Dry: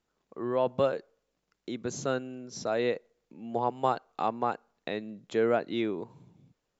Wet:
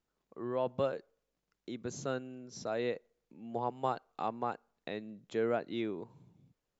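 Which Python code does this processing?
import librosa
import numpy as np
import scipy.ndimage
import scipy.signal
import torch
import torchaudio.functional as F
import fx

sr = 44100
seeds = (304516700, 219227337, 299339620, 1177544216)

y = fx.low_shelf(x, sr, hz=130.0, db=4.5)
y = y * 10.0 ** (-6.5 / 20.0)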